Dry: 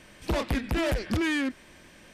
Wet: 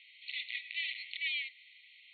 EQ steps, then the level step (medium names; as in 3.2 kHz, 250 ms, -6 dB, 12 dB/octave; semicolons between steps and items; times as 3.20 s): brick-wall FIR band-pass 1.9–4.4 kHz; 0.0 dB